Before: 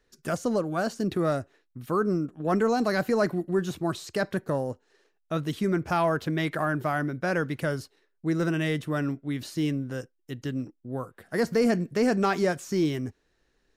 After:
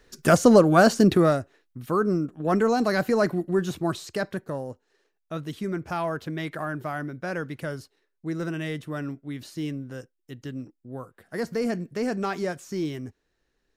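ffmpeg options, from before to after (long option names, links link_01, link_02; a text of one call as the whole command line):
ffmpeg -i in.wav -af "volume=11.5dB,afade=type=out:start_time=0.98:duration=0.4:silence=0.334965,afade=type=out:start_time=3.88:duration=0.59:silence=0.501187" out.wav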